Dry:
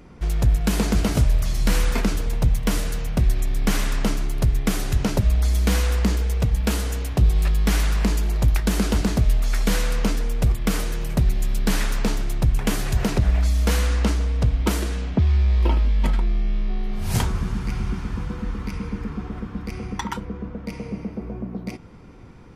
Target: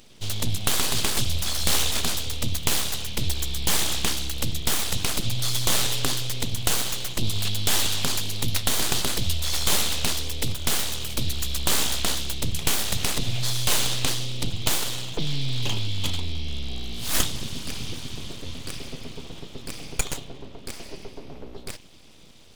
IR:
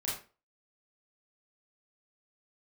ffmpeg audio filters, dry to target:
-af "highshelf=frequency=2300:width_type=q:width=3:gain=14,bandreject=frequency=113.8:width_type=h:width=4,bandreject=frequency=227.6:width_type=h:width=4,bandreject=frequency=341.4:width_type=h:width=4,bandreject=frequency=455.2:width_type=h:width=4,bandreject=frequency=569:width_type=h:width=4,bandreject=frequency=682.8:width_type=h:width=4,bandreject=frequency=796.6:width_type=h:width=4,bandreject=frequency=910.4:width_type=h:width=4,bandreject=frequency=1024.2:width_type=h:width=4,bandreject=frequency=1138:width_type=h:width=4,bandreject=frequency=1251.8:width_type=h:width=4,bandreject=frequency=1365.6:width_type=h:width=4,bandreject=frequency=1479.4:width_type=h:width=4,bandreject=frequency=1593.2:width_type=h:width=4,bandreject=frequency=1707:width_type=h:width=4,bandreject=frequency=1820.8:width_type=h:width=4,bandreject=frequency=1934.6:width_type=h:width=4,bandreject=frequency=2048.4:width_type=h:width=4,bandreject=frequency=2162.2:width_type=h:width=4,bandreject=frequency=2276:width_type=h:width=4,bandreject=frequency=2389.8:width_type=h:width=4,bandreject=frequency=2503.6:width_type=h:width=4,bandreject=frequency=2617.4:width_type=h:width=4,bandreject=frequency=2731.2:width_type=h:width=4,bandreject=frequency=2845:width_type=h:width=4,bandreject=frequency=2958.8:width_type=h:width=4,bandreject=frequency=3072.6:width_type=h:width=4,bandreject=frequency=3186.4:width_type=h:width=4,bandreject=frequency=3300.2:width_type=h:width=4,bandreject=frequency=3414:width_type=h:width=4,bandreject=frequency=3527.8:width_type=h:width=4,bandreject=frequency=3641.6:width_type=h:width=4,bandreject=frequency=3755.4:width_type=h:width=4,bandreject=frequency=3869.2:width_type=h:width=4,bandreject=frequency=3983:width_type=h:width=4,bandreject=frequency=4096.8:width_type=h:width=4,aeval=exprs='abs(val(0))':channel_layout=same,volume=-5.5dB"

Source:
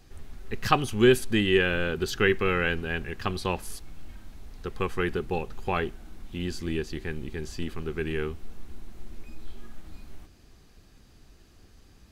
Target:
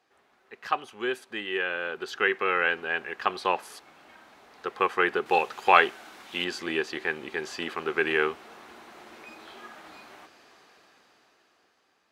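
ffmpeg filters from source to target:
ffmpeg -i in.wav -af "highpass=750,dynaudnorm=framelen=380:gausssize=9:maxgain=17dB,asetnsamples=nb_out_samples=441:pad=0,asendcmd='5.26 lowpass f 3700;6.44 lowpass f 1400',lowpass=frequency=1100:poles=1" out.wav

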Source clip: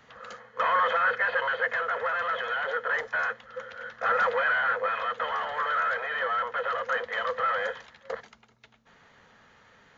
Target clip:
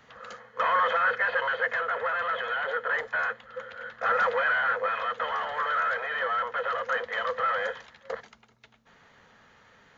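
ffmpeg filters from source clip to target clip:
ffmpeg -i in.wav -filter_complex "[0:a]asettb=1/sr,asplit=3[link_01][link_02][link_03];[link_01]atrim=end=1.804[link_04];[link_02]atrim=start=1.8:end=4.02,asetpts=PTS-STARTPTS,afade=type=in:duration=0.004:curve=qsin,afade=type=out:start_time=2.216:duration=0.004:curve=qsin,equalizer=frequency=5700:width_type=o:width=0.36:gain=-7[link_05];[link_03]atrim=start=4.016[link_06];[link_04][link_05]acrossfade=duration=0.004:curve1=hsin:curve2=qsin[link_07];[link_07][link_06]acrossfade=duration=0.004:curve1=qsin:curve2=hsin" out.wav

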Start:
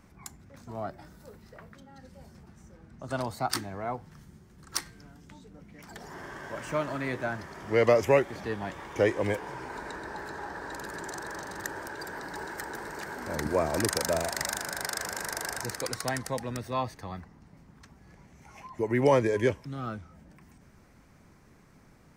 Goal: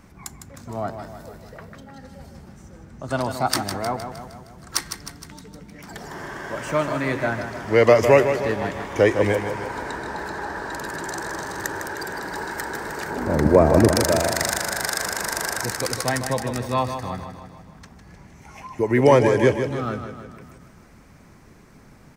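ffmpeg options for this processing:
ffmpeg -i in.wav -filter_complex "[0:a]asettb=1/sr,asplit=3[link_01][link_02][link_03];[link_01]atrim=end=13.104[link_04];[link_02]atrim=start=13.1:end=13.96,asetpts=PTS-STARTPTS,afade=type=in:duration=0.004:curve=qsin,afade=type=out:start_time=0.856:duration=0.004:curve=qsin,tiltshelf=frequency=1200:gain=7.5[link_05];[link_03]atrim=start=13.956[link_06];[link_04][link_05]acrossfade=duration=0.004:curve1=hsin:curve2=qsin[link_07];[link_07][link_06]acrossfade=duration=0.004:curve1=qsin:curve2=hsin,aecho=1:1:155|310|465|620|775|930|1085:0.376|0.207|0.114|0.0625|0.0344|0.0189|0.0104,volume=7.5dB" out.wav

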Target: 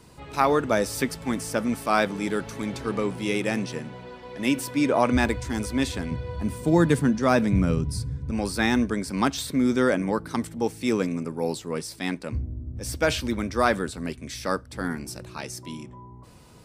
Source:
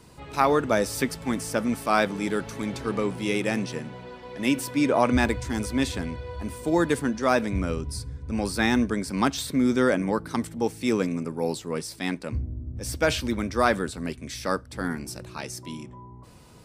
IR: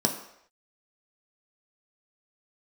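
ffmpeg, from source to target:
-filter_complex "[0:a]asettb=1/sr,asplit=3[link_01][link_02][link_03];[link_01]atrim=end=6.114[link_04];[link_02]atrim=start=6.11:end=8.31,asetpts=PTS-STARTPTS,afade=type=in:duration=0.004:curve=qsin,afade=type=out:start_time=2.196:duration=0.004:curve=qsin,equalizer=frequency=150:width_type=o:width=1.3:gain=10.5[link_05];[link_03]atrim=start=8.306[link_06];[link_04][link_05]acrossfade=duration=0.004:curve1=hsin:curve2=qsin[link_07];[link_07][link_06]acrossfade=duration=0.004:curve1=qsin:curve2=hsin"

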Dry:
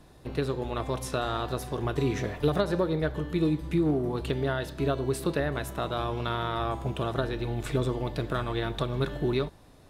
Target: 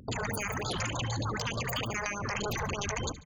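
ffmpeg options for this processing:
ffmpeg -i in.wav -filter_complex "[0:a]afftfilt=real='re*lt(hypot(re,im),0.158)':imag='im*lt(hypot(re,im),0.158)':win_size=1024:overlap=0.75,dynaudnorm=framelen=280:gausssize=7:maxgain=4.5dB,equalizer=frequency=430:width_type=o:width=1.1:gain=-4,asetrate=25476,aresample=44100,atempo=1.73107,acompressor=threshold=-36dB:ratio=16,afftfilt=real='re*gte(hypot(re,im),0.01)':imag='im*gte(hypot(re,im),0.01)':win_size=1024:overlap=0.75,asetrate=134064,aresample=44100,asplit=2[link_01][link_02];[link_02]aecho=0:1:71|142|213|284:0.141|0.0607|0.0261|0.0112[link_03];[link_01][link_03]amix=inputs=2:normalize=0,afftfilt=real='re*(1-between(b*sr/1024,270*pow(2300/270,0.5+0.5*sin(2*PI*3.3*pts/sr))/1.41,270*pow(2300/270,0.5+0.5*sin(2*PI*3.3*pts/sr))*1.41))':imag='im*(1-between(b*sr/1024,270*pow(2300/270,0.5+0.5*sin(2*PI*3.3*pts/sr))/1.41,270*pow(2300/270,0.5+0.5*sin(2*PI*3.3*pts/sr))*1.41))':win_size=1024:overlap=0.75,volume=8dB" out.wav

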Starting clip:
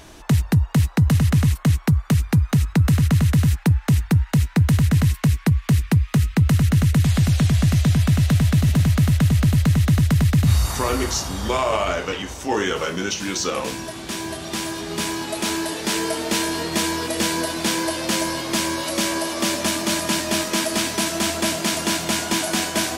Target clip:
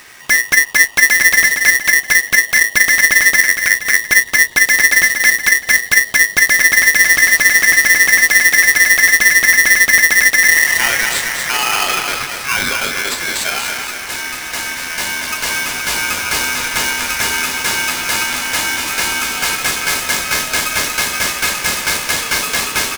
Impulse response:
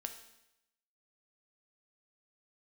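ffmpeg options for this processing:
-filter_complex "[0:a]aecho=1:1:236|472|708|944|1180|1416:0.501|0.246|0.12|0.059|0.0289|0.0142,asettb=1/sr,asplit=3[link_01][link_02][link_03];[link_01]atrim=end=3.404[link_04];[link_02]atrim=start=3.4:end=4.01,asetpts=PTS-STARTPTS,afade=type=in:duration=0.004:curve=qsin,afade=type=out:start_time=0.606:duration=0.004:curve=qsin,aeval=exprs='clip(val(0),-1,0.0794)':channel_layout=same[link_05];[link_03]atrim=start=4.006[link_06];[link_04][link_05]acrossfade=duration=0.004:curve1=hsin:curve2=qsin[link_07];[link_07][link_06]acrossfade=duration=0.004:curve1=qsin:curve2=hsin,aeval=exprs='val(0)*sgn(sin(2*PI*1900*n/s))':channel_layout=same,volume=4dB"

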